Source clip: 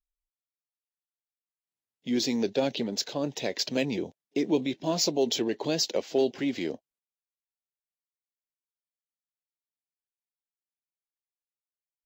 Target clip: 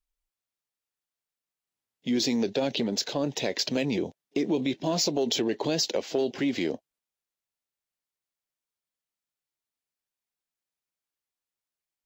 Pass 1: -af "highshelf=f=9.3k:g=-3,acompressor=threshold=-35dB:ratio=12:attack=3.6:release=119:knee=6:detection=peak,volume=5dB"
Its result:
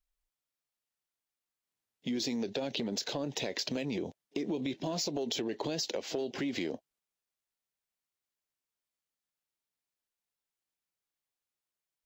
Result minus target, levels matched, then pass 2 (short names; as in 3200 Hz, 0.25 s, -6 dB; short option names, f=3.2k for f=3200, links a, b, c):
compressor: peak gain reduction +8.5 dB
-af "highshelf=f=9.3k:g=-3,acompressor=threshold=-25.5dB:ratio=12:attack=3.6:release=119:knee=6:detection=peak,volume=5dB"